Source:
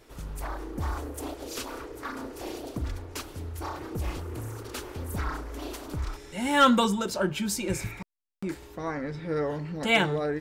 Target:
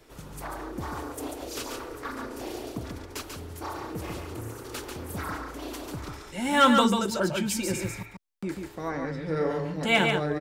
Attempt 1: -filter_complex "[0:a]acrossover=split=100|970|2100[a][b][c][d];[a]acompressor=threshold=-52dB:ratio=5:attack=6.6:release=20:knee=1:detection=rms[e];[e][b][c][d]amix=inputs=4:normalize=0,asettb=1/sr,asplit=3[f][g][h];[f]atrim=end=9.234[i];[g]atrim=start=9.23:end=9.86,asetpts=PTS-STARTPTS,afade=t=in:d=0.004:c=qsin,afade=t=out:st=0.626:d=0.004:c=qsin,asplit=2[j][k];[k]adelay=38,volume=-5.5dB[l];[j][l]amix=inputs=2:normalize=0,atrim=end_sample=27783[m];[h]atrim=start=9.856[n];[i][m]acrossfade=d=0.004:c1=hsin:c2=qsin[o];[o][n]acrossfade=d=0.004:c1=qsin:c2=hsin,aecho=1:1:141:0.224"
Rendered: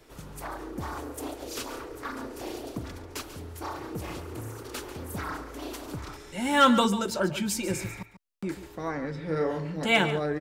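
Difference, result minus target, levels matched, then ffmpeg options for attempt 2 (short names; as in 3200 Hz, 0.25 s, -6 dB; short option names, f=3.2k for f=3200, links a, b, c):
echo-to-direct -8 dB
-filter_complex "[0:a]acrossover=split=100|970|2100[a][b][c][d];[a]acompressor=threshold=-52dB:ratio=5:attack=6.6:release=20:knee=1:detection=rms[e];[e][b][c][d]amix=inputs=4:normalize=0,asettb=1/sr,asplit=3[f][g][h];[f]atrim=end=9.234[i];[g]atrim=start=9.23:end=9.86,asetpts=PTS-STARTPTS,afade=t=in:d=0.004:c=qsin,afade=t=out:st=0.626:d=0.004:c=qsin,asplit=2[j][k];[k]adelay=38,volume=-5.5dB[l];[j][l]amix=inputs=2:normalize=0,atrim=end_sample=27783[m];[h]atrim=start=9.856[n];[i][m]acrossfade=d=0.004:c1=hsin:c2=qsin[o];[o][n]acrossfade=d=0.004:c1=qsin:c2=hsin,aecho=1:1:141:0.562"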